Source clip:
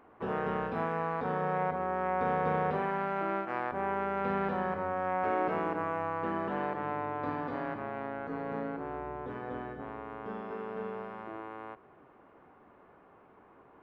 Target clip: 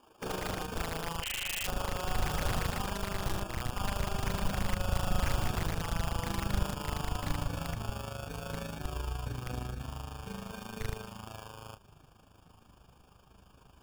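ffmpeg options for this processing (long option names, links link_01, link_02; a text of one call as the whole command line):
ffmpeg -i in.wav -filter_complex "[0:a]acrusher=samples=22:mix=1:aa=0.000001,asettb=1/sr,asplit=3[link_01][link_02][link_03];[link_01]atrim=end=1.224[link_04];[link_02]atrim=start=1.22:end=1.66,asetpts=PTS-STARTPTS,afade=type=in:duration=0.004:curve=qsin,afade=type=out:start_time=0.436:duration=0.004:curve=qsin,lowpass=frequency=2800:width_type=q:width=0.5098,lowpass=frequency=2800:width_type=q:width=0.6013,lowpass=frequency=2800:width_type=q:width=0.9,lowpass=frequency=2800:width_type=q:width=2.563,afreqshift=-3300[link_05];[link_03]atrim=start=1.656[link_06];[link_04][link_05]acrossfade=duration=0.004:curve1=hsin:curve2=qsin[link_07];[link_07][link_06]acrossfade=duration=0.004:curve1=qsin:curve2=hsin,flanger=delay=15.5:depth=4.5:speed=0.3,tremolo=f=26:d=0.667,aeval=exprs='(mod(35.5*val(0)+1,2)-1)/35.5':channel_layout=same,asubboost=boost=9.5:cutoff=110,volume=3dB" out.wav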